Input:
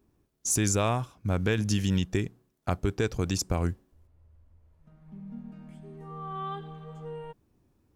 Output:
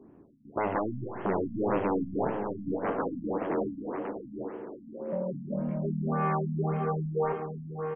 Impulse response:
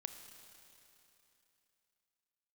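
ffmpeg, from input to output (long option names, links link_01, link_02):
-filter_complex "[0:a]acompressor=threshold=-30dB:ratio=4,tiltshelf=frequency=920:gain=5,aeval=exprs='0.119*sin(PI/2*5.01*val(0)/0.119)':channel_layout=same,asplit=2[link_01][link_02];[link_02]adelay=743,lowpass=frequency=4500:poles=1,volume=-6.5dB,asplit=2[link_03][link_04];[link_04]adelay=743,lowpass=frequency=4500:poles=1,volume=0.26,asplit=2[link_05][link_06];[link_06]adelay=743,lowpass=frequency=4500:poles=1,volume=0.26[link_07];[link_01][link_03][link_05][link_07]amix=inputs=4:normalize=0,asplit=3[link_08][link_09][link_10];[link_08]afade=type=out:start_time=2.71:duration=0.02[link_11];[link_09]aeval=exprs='val(0)*sin(2*PI*380*n/s)':channel_layout=same,afade=type=in:start_time=2.71:duration=0.02,afade=type=out:start_time=5.49:duration=0.02[link_12];[link_10]afade=type=in:start_time=5.49:duration=0.02[link_13];[link_11][link_12][link_13]amix=inputs=3:normalize=0,acrossover=split=170 2200:gain=0.1 1 0.178[link_14][link_15][link_16];[link_14][link_15][link_16]amix=inputs=3:normalize=0[link_17];[1:a]atrim=start_sample=2205[link_18];[link_17][link_18]afir=irnorm=-1:irlink=0,afftfilt=real='re*lt(b*sr/1024,270*pow(3400/270,0.5+0.5*sin(2*PI*1.8*pts/sr)))':imag='im*lt(b*sr/1024,270*pow(3400/270,0.5+0.5*sin(2*PI*1.8*pts/sr)))':win_size=1024:overlap=0.75"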